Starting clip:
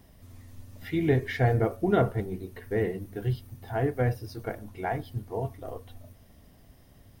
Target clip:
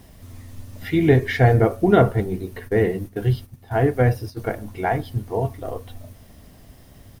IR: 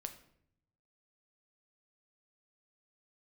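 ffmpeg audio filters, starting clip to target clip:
-filter_complex "[0:a]aresample=32000,aresample=44100,acrusher=bits=10:mix=0:aa=0.000001,asplit=3[link_01][link_02][link_03];[link_01]afade=type=out:start_time=2.67:duration=0.02[link_04];[link_02]agate=range=-11dB:threshold=-39dB:ratio=16:detection=peak,afade=type=in:start_time=2.67:duration=0.02,afade=type=out:start_time=4.4:duration=0.02[link_05];[link_03]afade=type=in:start_time=4.4:duration=0.02[link_06];[link_04][link_05][link_06]amix=inputs=3:normalize=0,volume=8.5dB"

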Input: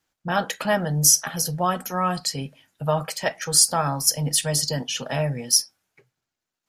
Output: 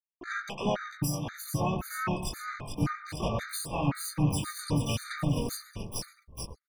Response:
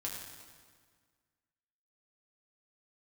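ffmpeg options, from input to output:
-filter_complex "[0:a]asplit=2[link_01][link_02];[link_02]adelay=21,volume=-4dB[link_03];[link_01][link_03]amix=inputs=2:normalize=0,asplit=2[link_04][link_05];[link_05]asplit=7[link_06][link_07][link_08][link_09][link_10][link_11][link_12];[link_06]adelay=430,afreqshift=-41,volume=-8dB[link_13];[link_07]adelay=860,afreqshift=-82,volume=-12.6dB[link_14];[link_08]adelay=1290,afreqshift=-123,volume=-17.2dB[link_15];[link_09]adelay=1720,afreqshift=-164,volume=-21.7dB[link_16];[link_10]adelay=2150,afreqshift=-205,volume=-26.3dB[link_17];[link_11]adelay=2580,afreqshift=-246,volume=-30.9dB[link_18];[link_12]adelay=3010,afreqshift=-287,volume=-35.5dB[link_19];[link_13][link_14][link_15][link_16][link_17][link_18][link_19]amix=inputs=7:normalize=0[link_20];[link_04][link_20]amix=inputs=2:normalize=0,aeval=exprs='sgn(val(0))*max(abs(val(0))-0.0282,0)':channel_layout=same,acompressor=threshold=-27dB:ratio=12,bass=frequency=250:gain=8,treble=frequency=4000:gain=-10,asplit=2[link_21][link_22];[link_22]adelay=130,lowpass=frequency=2800:poles=1,volume=-11.5dB,asplit=2[link_23][link_24];[link_24]adelay=130,lowpass=frequency=2800:poles=1,volume=0.47,asplit=2[link_25][link_26];[link_26]adelay=130,lowpass=frequency=2800:poles=1,volume=0.47,asplit=2[link_27][link_28];[link_28]adelay=130,lowpass=frequency=2800:poles=1,volume=0.47,asplit=2[link_29][link_30];[link_30]adelay=130,lowpass=frequency=2800:poles=1,volume=0.47[link_31];[link_23][link_25][link_27][link_29][link_31]amix=inputs=5:normalize=0[link_32];[link_21][link_32]amix=inputs=2:normalize=0,afftdn=noise_reduction=26:noise_floor=-51,asoftclip=type=tanh:threshold=-19.5dB,crystalizer=i=1:c=0,equalizer=frequency=6600:width=6.4:gain=-11.5,asplit=4[link_33][link_34][link_35][link_36];[link_34]asetrate=37084,aresample=44100,atempo=1.18921,volume=-6dB[link_37];[link_35]asetrate=52444,aresample=44100,atempo=0.840896,volume=-7dB[link_38];[link_36]asetrate=88200,aresample=44100,atempo=0.5,volume=-4dB[link_39];[link_33][link_37][link_38][link_39]amix=inputs=4:normalize=0,afftfilt=real='re*gt(sin(2*PI*1.9*pts/sr)*(1-2*mod(floor(b*sr/1024/1200),2)),0)':imag='im*gt(sin(2*PI*1.9*pts/sr)*(1-2*mod(floor(b*sr/1024/1200),2)),0)':win_size=1024:overlap=0.75"

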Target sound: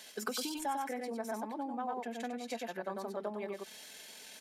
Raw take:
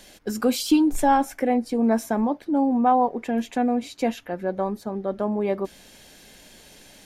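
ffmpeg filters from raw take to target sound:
ffmpeg -i in.wav -filter_complex "[0:a]aecho=1:1:4.6:0.38,asplit=2[link_01][link_02];[link_02]aecho=0:1:157:0.668[link_03];[link_01][link_03]amix=inputs=2:normalize=0,atempo=1.6,acompressor=threshold=-26dB:ratio=6,highpass=frequency=960:poles=1,volume=-1.5dB" out.wav

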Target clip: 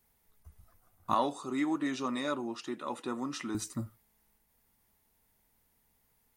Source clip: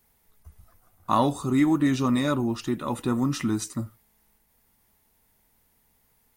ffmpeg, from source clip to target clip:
ffmpeg -i in.wav -filter_complex "[0:a]asettb=1/sr,asplit=3[link_01][link_02][link_03];[link_01]atrim=end=1.144[link_04];[link_02]atrim=start=1.14:end=3.55,asetpts=PTS-STARTPTS,afade=type=in:duration=0.004:curve=qsin,afade=type=out:start_time=2.406:duration=0.004:curve=qsin,highpass=340,lowpass=8000[link_05];[link_03]atrim=start=3.546[link_06];[link_04][link_05]acrossfade=duration=0.004:curve1=hsin:curve2=qsin[link_07];[link_07][link_06]acrossfade=duration=0.004:curve1=qsin:curve2=hsin,volume=-6dB" out.wav

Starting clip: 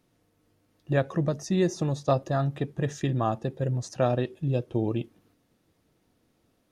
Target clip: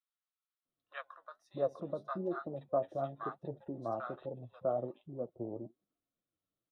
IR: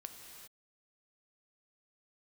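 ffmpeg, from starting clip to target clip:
-filter_complex "[0:a]bandreject=frequency=50:width_type=h:width=6,bandreject=frequency=100:width_type=h:width=6,afwtdn=0.02,superequalizer=8b=1.78:10b=2.51:13b=1.78:14b=0.631:15b=0.251,acrossover=split=250[link_01][link_02];[link_01]acompressor=threshold=-40dB:ratio=8[link_03];[link_03][link_02]amix=inputs=2:normalize=0,flanger=delay=2.6:depth=8.2:regen=52:speed=1.1:shape=sinusoidal,acrossover=split=1000[link_04][link_05];[link_04]adelay=650[link_06];[link_06][link_05]amix=inputs=2:normalize=0,volume=-6dB"

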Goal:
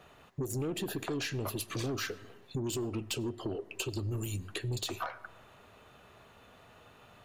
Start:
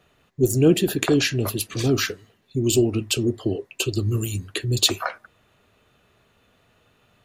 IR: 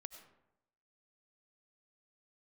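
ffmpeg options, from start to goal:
-filter_complex "[0:a]equalizer=frequency=890:width_type=o:width=1.4:gain=6.5,alimiter=limit=-12.5dB:level=0:latency=1:release=173,aeval=exprs='(tanh(8.91*val(0)+0.15)-tanh(0.15))/8.91':channel_layout=same,asplit=2[link_01][link_02];[1:a]atrim=start_sample=2205[link_03];[link_02][link_03]afir=irnorm=-1:irlink=0,volume=-7dB[link_04];[link_01][link_04]amix=inputs=2:normalize=0,acompressor=threshold=-37dB:ratio=3"

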